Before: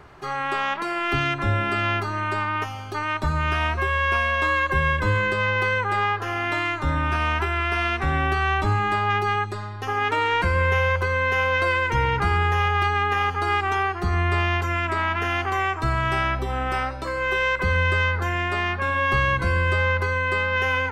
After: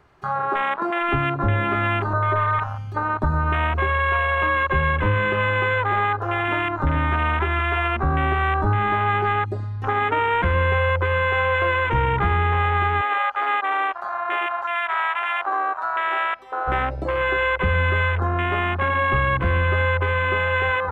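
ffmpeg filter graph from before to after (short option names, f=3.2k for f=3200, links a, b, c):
-filter_complex "[0:a]asettb=1/sr,asplit=3[a][b][c];[a]atrim=end=2.134[d];[b]atrim=start=2.13:end=2.59,asetpts=PTS-STARTPTS,afade=t=in:d=0.004:c=qsin,afade=t=out:st=0.456:d=0.004:c=qsin,lowpass=f=1.5k:w=0.5412,lowpass=f=1.5k:w=1.3066,aecho=1:1:1.8:0.99,atrim=end_sample=20286[e];[c]atrim=start=2.586[f];[d][e]acrossfade=d=0.004:c1=hsin:c2=qsin[g];[g][f]acrossfade=d=0.004:c1=qsin:c2=hsin,asettb=1/sr,asplit=3[h][i][j];[h]atrim=end=13.014[k];[i]atrim=start=13.01:end=16.68,asetpts=PTS-STARTPTS,afade=t=in:d=0.004:c=qsin,afade=t=out:st=3.666:d=0.004:c=qsin,highpass=670,highshelf=f=4.9k:g=-7.5,aeval=exprs='val(0)+0.00112*(sin(2*PI*50*n/s)+sin(2*PI*2*50*n/s)/2+sin(2*PI*3*50*n/s)/3+sin(2*PI*4*50*n/s)/4+sin(2*PI*5*50*n/s)/5)':c=same[l];[j]atrim=start=16.676[m];[k][l]acrossfade=d=0.004:c1=hsin:c2=qsin[n];[n][m]acrossfade=d=0.004:c1=qsin:c2=hsin,acrossover=split=2600[o][p];[p]acompressor=threshold=-47dB:ratio=4:attack=1:release=60[q];[o][q]amix=inputs=2:normalize=0,afwtdn=0.0562,acompressor=threshold=-27dB:ratio=2,volume=7dB"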